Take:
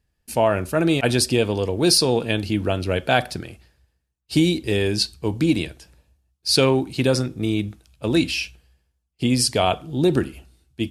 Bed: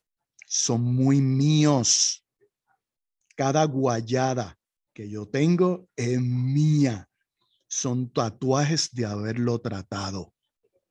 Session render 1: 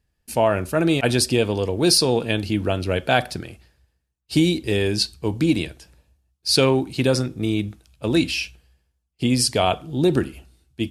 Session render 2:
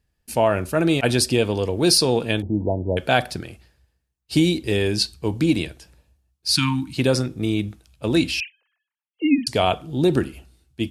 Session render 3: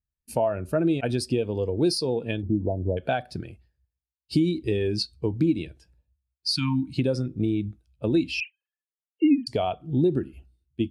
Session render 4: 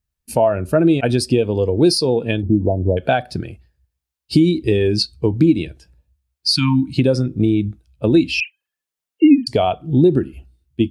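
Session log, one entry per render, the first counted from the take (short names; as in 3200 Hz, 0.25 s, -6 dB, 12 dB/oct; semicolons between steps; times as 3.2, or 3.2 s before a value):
nothing audible
2.42–2.97 brick-wall FIR low-pass 1000 Hz; 6.52–6.97 Chebyshev band-stop 300–920 Hz, order 4; 8.4–9.47 sine-wave speech
compressor 6:1, threshold -24 dBFS, peak gain reduction 11.5 dB; spectral expander 1.5:1
gain +9 dB; limiter -3 dBFS, peak gain reduction 1.5 dB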